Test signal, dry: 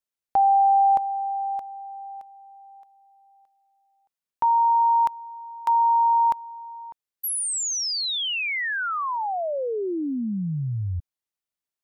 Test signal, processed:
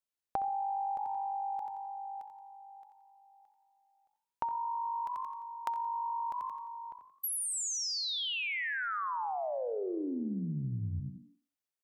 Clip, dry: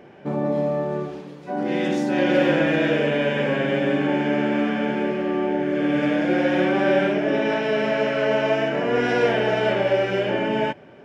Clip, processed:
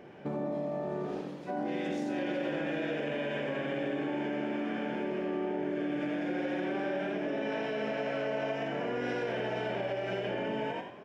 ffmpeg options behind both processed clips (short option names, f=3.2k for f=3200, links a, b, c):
-filter_complex "[0:a]asplit=2[a][b];[b]asplit=4[c][d][e][f];[c]adelay=87,afreqshift=49,volume=-8.5dB[g];[d]adelay=174,afreqshift=98,volume=-17.1dB[h];[e]adelay=261,afreqshift=147,volume=-25.8dB[i];[f]adelay=348,afreqshift=196,volume=-34.4dB[j];[g][h][i][j]amix=inputs=4:normalize=0[k];[a][k]amix=inputs=2:normalize=0,acompressor=threshold=-32dB:ratio=6:attack=63:release=47:knee=1:detection=rms,asplit=2[l][m];[m]adelay=65,lowpass=f=2.3k:p=1,volume=-12.5dB,asplit=2[n][o];[o]adelay=65,lowpass=f=2.3k:p=1,volume=0.31,asplit=2[p][q];[q]adelay=65,lowpass=f=2.3k:p=1,volume=0.31[r];[n][p][r]amix=inputs=3:normalize=0[s];[l][s]amix=inputs=2:normalize=0,volume=-4.5dB"